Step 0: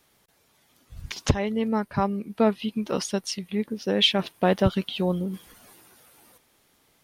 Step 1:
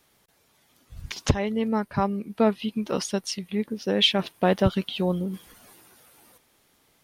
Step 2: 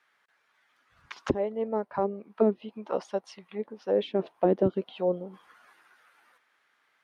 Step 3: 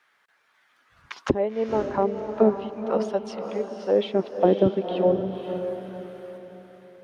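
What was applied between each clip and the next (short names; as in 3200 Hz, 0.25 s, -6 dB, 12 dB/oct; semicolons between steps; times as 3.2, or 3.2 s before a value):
nothing audible
auto-wah 330–1600 Hz, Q 2.3, down, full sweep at -17 dBFS; gain +4 dB
diffused feedback echo 0.524 s, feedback 40%, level -7 dB; gain +4.5 dB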